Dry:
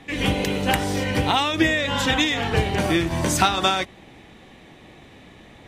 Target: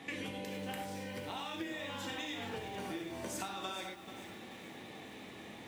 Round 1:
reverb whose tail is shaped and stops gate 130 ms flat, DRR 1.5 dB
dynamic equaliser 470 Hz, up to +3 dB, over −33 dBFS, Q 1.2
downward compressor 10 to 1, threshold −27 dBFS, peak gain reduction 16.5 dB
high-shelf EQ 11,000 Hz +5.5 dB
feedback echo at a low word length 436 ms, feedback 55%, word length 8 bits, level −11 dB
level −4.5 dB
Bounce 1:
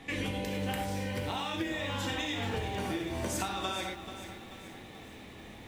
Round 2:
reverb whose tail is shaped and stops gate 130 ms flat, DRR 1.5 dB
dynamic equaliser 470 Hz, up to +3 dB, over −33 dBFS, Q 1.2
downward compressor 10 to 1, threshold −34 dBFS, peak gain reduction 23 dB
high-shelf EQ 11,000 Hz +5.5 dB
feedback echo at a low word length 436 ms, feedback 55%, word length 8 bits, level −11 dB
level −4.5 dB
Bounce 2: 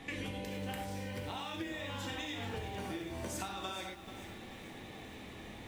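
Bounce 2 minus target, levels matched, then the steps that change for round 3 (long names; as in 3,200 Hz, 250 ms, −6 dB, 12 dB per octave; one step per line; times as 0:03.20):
125 Hz band +5.5 dB
add after downward compressor: high-pass filter 150 Hz 12 dB per octave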